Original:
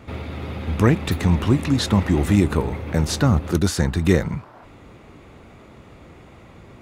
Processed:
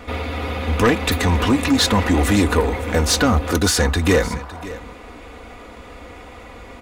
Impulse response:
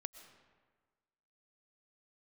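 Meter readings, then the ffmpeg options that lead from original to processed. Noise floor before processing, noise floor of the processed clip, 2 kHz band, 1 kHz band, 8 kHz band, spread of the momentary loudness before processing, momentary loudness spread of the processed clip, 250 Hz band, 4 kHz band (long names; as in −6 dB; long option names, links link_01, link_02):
−46 dBFS, −39 dBFS, +8.0 dB, +7.5 dB, +8.5 dB, 12 LU, 11 LU, +1.0 dB, +8.5 dB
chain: -af "equalizer=frequency=170:width_type=o:width=1.1:gain=-14,aecho=1:1:4.1:0.61,asoftclip=type=tanh:threshold=-17.5dB,aecho=1:1:559:0.15,volume=8.5dB"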